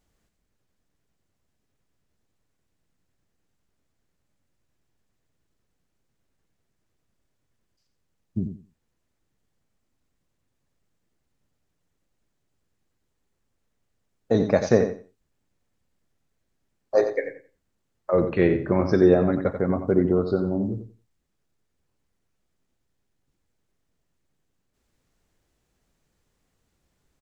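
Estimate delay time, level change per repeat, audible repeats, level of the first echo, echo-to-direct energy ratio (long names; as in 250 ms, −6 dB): 89 ms, −14.0 dB, 2, −9.0 dB, −9.0 dB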